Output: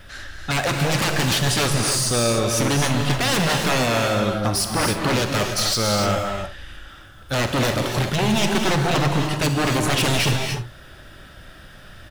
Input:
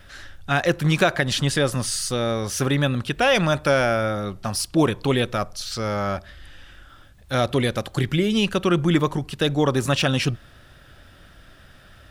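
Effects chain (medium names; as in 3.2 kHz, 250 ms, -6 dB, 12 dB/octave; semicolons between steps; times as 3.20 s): 5.27–6.00 s: treble shelf 2.5 kHz +7.5 dB; wavefolder -20 dBFS; early reflections 43 ms -14.5 dB, 67 ms -15 dB; gated-style reverb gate 320 ms rising, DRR 3 dB; trim +4 dB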